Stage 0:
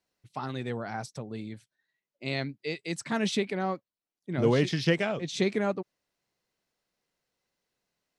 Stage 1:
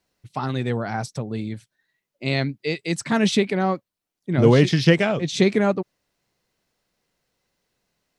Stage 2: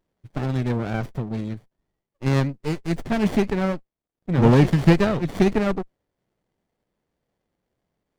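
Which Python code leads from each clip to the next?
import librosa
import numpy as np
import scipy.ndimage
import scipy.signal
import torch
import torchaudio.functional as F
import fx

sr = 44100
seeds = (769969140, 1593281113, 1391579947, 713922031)

y1 = fx.low_shelf(x, sr, hz=160.0, db=6.0)
y1 = y1 * librosa.db_to_amplitude(7.5)
y2 = fx.running_max(y1, sr, window=33)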